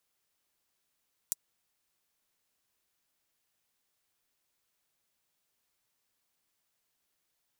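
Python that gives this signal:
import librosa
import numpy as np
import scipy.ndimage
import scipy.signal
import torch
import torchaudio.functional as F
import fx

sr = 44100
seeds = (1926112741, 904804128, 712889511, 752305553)

y = fx.drum_hat(sr, length_s=0.24, from_hz=7000.0, decay_s=0.03)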